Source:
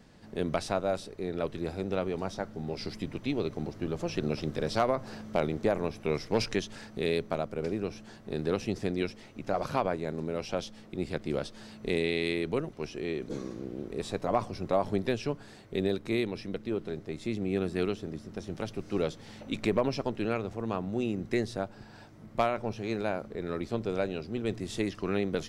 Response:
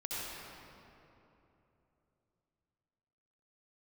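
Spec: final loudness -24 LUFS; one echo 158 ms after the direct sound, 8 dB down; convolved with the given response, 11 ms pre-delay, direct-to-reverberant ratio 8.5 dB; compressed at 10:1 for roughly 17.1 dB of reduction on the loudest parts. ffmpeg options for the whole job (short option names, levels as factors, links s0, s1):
-filter_complex "[0:a]acompressor=threshold=0.01:ratio=10,aecho=1:1:158:0.398,asplit=2[s0][s1];[1:a]atrim=start_sample=2205,adelay=11[s2];[s1][s2]afir=irnorm=-1:irlink=0,volume=0.266[s3];[s0][s3]amix=inputs=2:normalize=0,volume=10.6"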